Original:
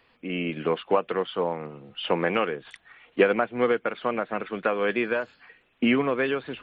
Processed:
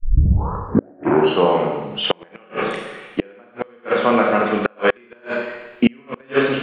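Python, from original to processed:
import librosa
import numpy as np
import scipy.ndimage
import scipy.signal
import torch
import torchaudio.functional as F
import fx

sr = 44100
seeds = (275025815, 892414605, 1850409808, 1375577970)

y = fx.tape_start_head(x, sr, length_s=1.43)
y = fx.rev_schroeder(y, sr, rt60_s=1.1, comb_ms=30, drr_db=-1.0)
y = fx.gate_flip(y, sr, shuts_db=-12.0, range_db=-35)
y = y * 10.0 ** (9.0 / 20.0)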